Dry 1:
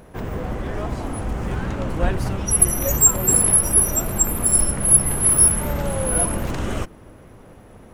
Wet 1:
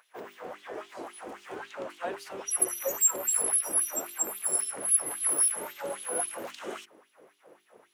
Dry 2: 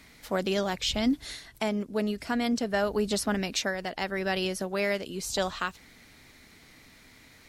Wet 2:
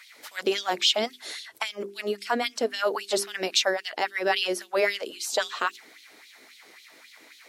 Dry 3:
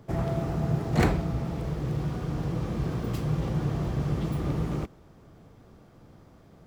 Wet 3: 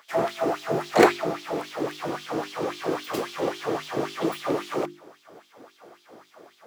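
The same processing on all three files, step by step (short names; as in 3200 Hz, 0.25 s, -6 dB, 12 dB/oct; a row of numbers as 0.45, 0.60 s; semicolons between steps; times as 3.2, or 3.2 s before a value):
LFO high-pass sine 3.7 Hz 350–3600 Hz; notches 50/100/150/200/250/300/350/400 Hz; match loudness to -27 LUFS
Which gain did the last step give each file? -11.0, +2.5, +8.0 dB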